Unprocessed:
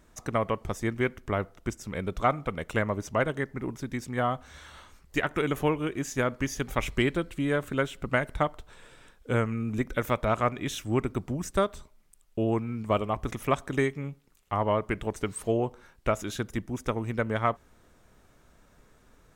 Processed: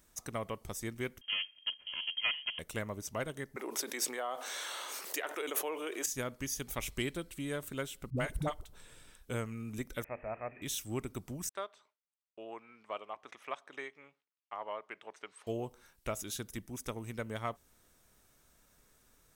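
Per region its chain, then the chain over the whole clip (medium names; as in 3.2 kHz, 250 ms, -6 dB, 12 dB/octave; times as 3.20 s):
1.21–2.59 s: comb filter that takes the minimum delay 2.7 ms + frequency inversion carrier 3.2 kHz
3.56–6.06 s: high-pass 400 Hz 24 dB/octave + treble shelf 3.4 kHz -8.5 dB + level flattener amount 70%
8.10–9.30 s: bass shelf 320 Hz +9.5 dB + phase dispersion highs, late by 69 ms, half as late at 430 Hz
10.04–10.62 s: zero-crossing glitches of -21 dBFS + rippled Chebyshev low-pass 2.6 kHz, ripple 9 dB + hum notches 50/100/150/200/250/300/350/400/450 Hz
11.49–15.47 s: band-pass 650–2600 Hz + gate with hold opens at -48 dBFS, closes at -57 dBFS
whole clip: pre-emphasis filter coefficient 0.8; band-stop 7.1 kHz, Q 18; dynamic bell 1.6 kHz, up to -4 dB, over -52 dBFS, Q 0.88; trim +3 dB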